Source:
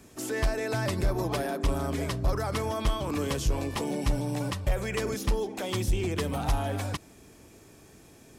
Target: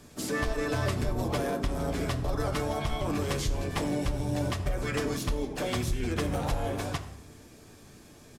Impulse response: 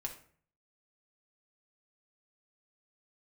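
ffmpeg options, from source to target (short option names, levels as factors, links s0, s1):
-filter_complex "[0:a]asplit=3[s0][s1][s2];[s1]asetrate=29433,aresample=44100,atempo=1.49831,volume=0.794[s3];[s2]asetrate=55563,aresample=44100,atempo=0.793701,volume=0.158[s4];[s0][s3][s4]amix=inputs=3:normalize=0,acompressor=threshold=0.0631:ratio=6,asplit=2[s5][s6];[1:a]atrim=start_sample=2205,asetrate=28665,aresample=44100[s7];[s6][s7]afir=irnorm=-1:irlink=0,volume=1.26[s8];[s5][s8]amix=inputs=2:normalize=0,volume=0.398"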